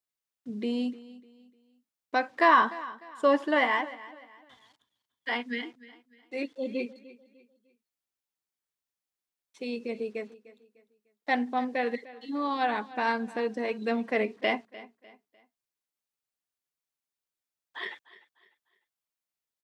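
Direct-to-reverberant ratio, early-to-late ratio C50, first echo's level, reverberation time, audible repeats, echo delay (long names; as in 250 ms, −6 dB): no reverb audible, no reverb audible, −18.5 dB, no reverb audible, 2, 300 ms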